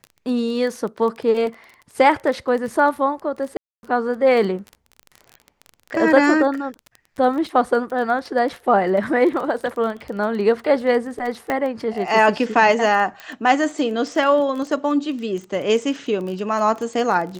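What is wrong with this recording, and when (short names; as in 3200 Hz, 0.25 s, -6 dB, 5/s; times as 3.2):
crackle 19/s -27 dBFS
3.57–3.83 gap 0.261 s
11.5 pop -11 dBFS
13.2 pop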